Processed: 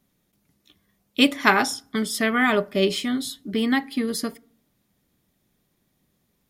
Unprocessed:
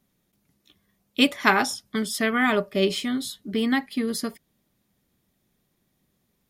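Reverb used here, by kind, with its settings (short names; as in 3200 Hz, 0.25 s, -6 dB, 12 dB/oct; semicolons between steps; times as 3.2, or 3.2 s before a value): FDN reverb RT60 0.54 s, low-frequency decay 1.25×, high-frequency decay 0.55×, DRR 19 dB; gain +1.5 dB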